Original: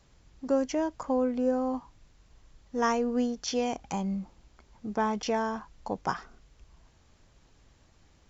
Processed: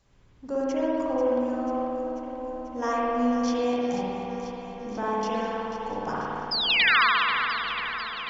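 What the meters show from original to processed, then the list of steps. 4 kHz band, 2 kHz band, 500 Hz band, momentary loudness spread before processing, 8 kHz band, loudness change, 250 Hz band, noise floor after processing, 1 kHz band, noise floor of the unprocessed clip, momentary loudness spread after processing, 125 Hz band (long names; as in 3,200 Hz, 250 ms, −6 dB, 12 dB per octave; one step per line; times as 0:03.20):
+16.0 dB, +15.5 dB, +3.5 dB, 11 LU, can't be measured, +4.5 dB, +2.0 dB, −48 dBFS, +6.5 dB, −63 dBFS, 14 LU, −0.5 dB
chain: sound drawn into the spectrogram fall, 0:06.51–0:07.02, 970–5,200 Hz −21 dBFS
delay that swaps between a low-pass and a high-pass 245 ms, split 1,100 Hz, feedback 84%, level −8.5 dB
spring reverb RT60 2.4 s, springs 53 ms, chirp 75 ms, DRR −7 dB
level −5.5 dB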